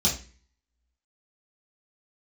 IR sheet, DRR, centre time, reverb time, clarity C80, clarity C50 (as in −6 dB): −5.5 dB, 24 ms, 0.35 s, 14.5 dB, 8.5 dB